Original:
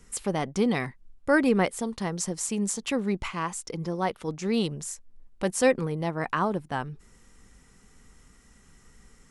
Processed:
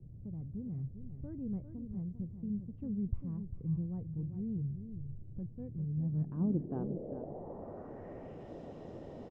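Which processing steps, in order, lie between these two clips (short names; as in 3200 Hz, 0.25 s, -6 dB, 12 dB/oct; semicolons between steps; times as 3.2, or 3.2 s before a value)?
Doppler pass-by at 3.22, 14 m/s, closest 17 m; in parallel at -2 dB: compressor, threshold -39 dBFS, peak gain reduction 16.5 dB; on the sum: band noise 72–620 Hz -48 dBFS; low-pass sweep 110 Hz -> 3500 Hz, 5.87–8.53; on a send: echo 0.398 s -9.5 dB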